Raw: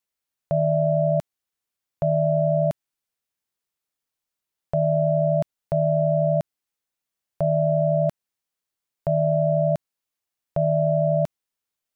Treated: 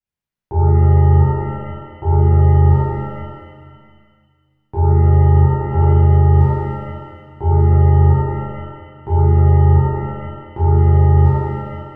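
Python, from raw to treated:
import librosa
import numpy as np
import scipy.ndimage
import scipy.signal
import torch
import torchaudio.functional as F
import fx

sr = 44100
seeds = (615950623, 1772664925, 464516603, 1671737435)

y = x * np.sin(2.0 * np.pi * 240.0 * np.arange(len(x)) / sr)
y = fx.bass_treble(y, sr, bass_db=13, treble_db=-8)
y = fx.rev_shimmer(y, sr, seeds[0], rt60_s=1.8, semitones=7, shimmer_db=-8, drr_db=-11.5)
y = y * 10.0 ** (-8.0 / 20.0)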